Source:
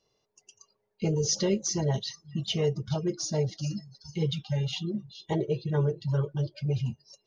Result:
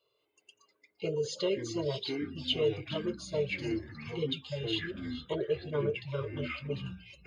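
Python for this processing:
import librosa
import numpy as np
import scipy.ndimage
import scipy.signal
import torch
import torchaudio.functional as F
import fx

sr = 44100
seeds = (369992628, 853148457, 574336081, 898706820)

y = fx.highpass(x, sr, hz=380.0, slope=6)
y = fx.fixed_phaser(y, sr, hz=1200.0, stages=8)
y = fx.echo_pitch(y, sr, ms=185, semitones=-5, count=3, db_per_echo=-6.0)
y = y * 10.0 ** (2.0 / 20.0)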